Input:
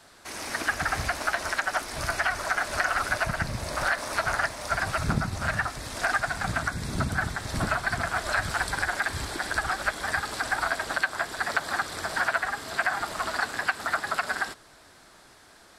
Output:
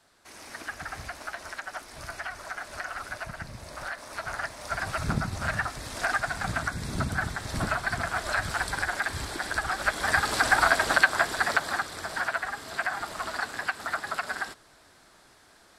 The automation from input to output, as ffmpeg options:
ffmpeg -i in.wav -af "volume=6dB,afade=type=in:start_time=4.08:duration=1.14:silence=0.375837,afade=type=in:start_time=9.7:duration=0.68:silence=0.421697,afade=type=out:start_time=11.08:duration=0.83:silence=0.334965" out.wav

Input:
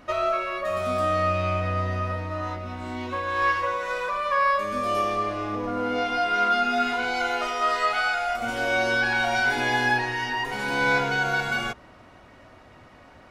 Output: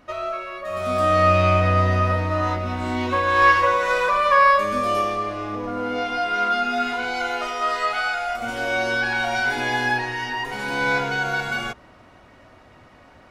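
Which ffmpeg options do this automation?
ffmpeg -i in.wav -af "volume=8dB,afade=type=in:start_time=0.65:duration=0.69:silence=0.266073,afade=type=out:start_time=4.26:duration=0.93:silence=0.421697" out.wav

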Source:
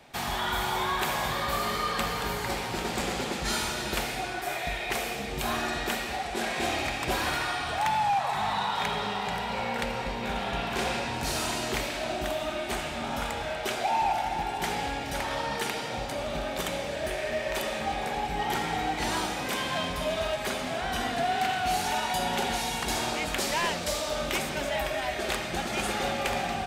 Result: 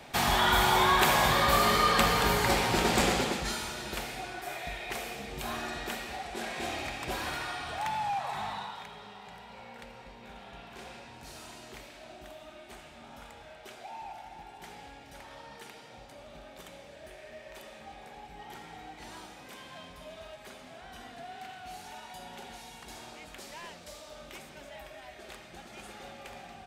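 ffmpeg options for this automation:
ffmpeg -i in.wav -af "volume=5dB,afade=type=out:start_time=3.03:duration=0.52:silence=0.266073,afade=type=out:start_time=8.39:duration=0.47:silence=0.298538" out.wav

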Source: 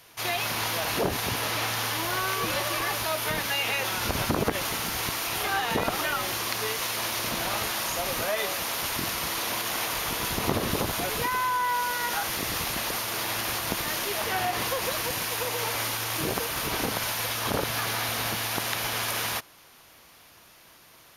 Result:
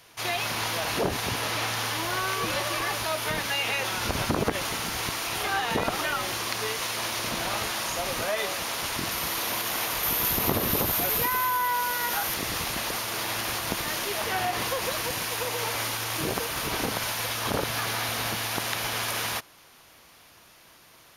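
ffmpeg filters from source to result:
ffmpeg -i in.wav -af "asetnsamples=nb_out_samples=441:pad=0,asendcmd='9.11 equalizer g 3;10.03 equalizer g 13;11.68 equalizer g 6;12.34 equalizer g -3',equalizer=frequency=13000:width_type=o:width=0.33:gain=-6.5" out.wav

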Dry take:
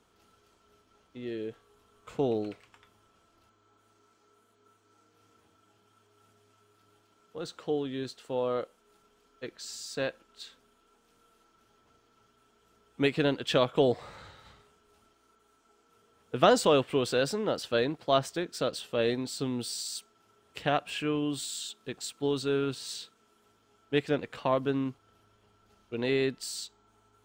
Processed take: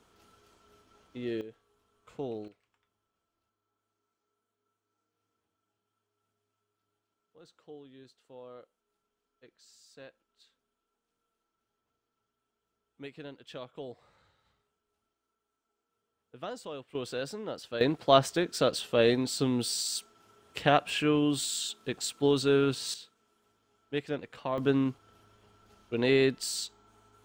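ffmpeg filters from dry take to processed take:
ffmpeg -i in.wav -af "asetnsamples=nb_out_samples=441:pad=0,asendcmd='1.41 volume volume -8.5dB;2.48 volume volume -18dB;16.95 volume volume -8dB;17.81 volume volume 4dB;22.94 volume volume -5.5dB;24.58 volume volume 3.5dB',volume=2.5dB" out.wav

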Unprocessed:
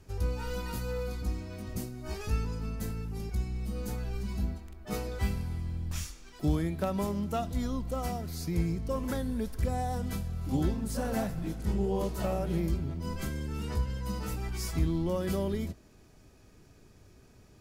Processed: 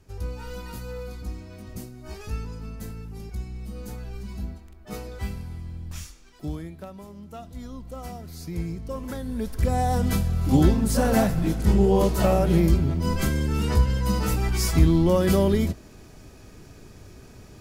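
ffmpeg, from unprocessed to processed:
ffmpeg -i in.wav -af "volume=22dB,afade=type=out:start_time=6.09:duration=0.94:silence=0.281838,afade=type=in:start_time=7.03:duration=1.64:silence=0.266073,afade=type=in:start_time=9.2:duration=0.88:silence=0.266073" out.wav

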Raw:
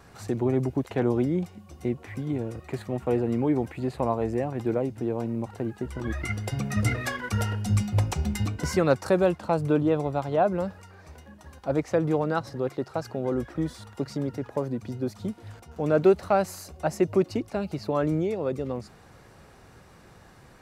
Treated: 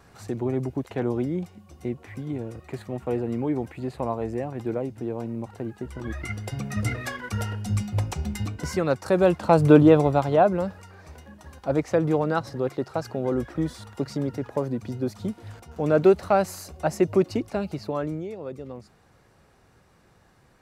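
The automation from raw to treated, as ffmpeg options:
ffmpeg -i in.wav -af "volume=9.5dB,afade=type=in:start_time=9.04:duration=0.71:silence=0.266073,afade=type=out:start_time=9.75:duration=0.84:silence=0.421697,afade=type=out:start_time=17.54:duration=0.67:silence=0.354813" out.wav

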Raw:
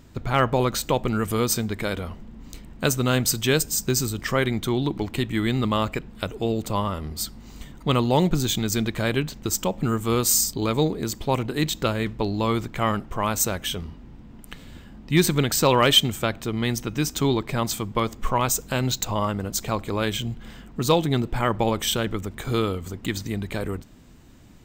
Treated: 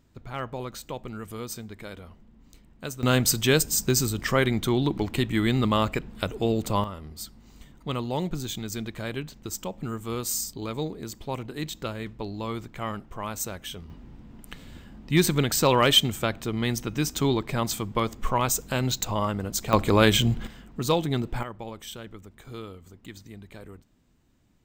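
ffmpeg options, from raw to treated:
ffmpeg -i in.wav -af "asetnsamples=nb_out_samples=441:pad=0,asendcmd='3.03 volume volume 0dB;6.84 volume volume -9dB;13.9 volume volume -2dB;19.73 volume volume 6.5dB;20.47 volume volume -4dB;21.43 volume volume -15.5dB',volume=-13dB" out.wav

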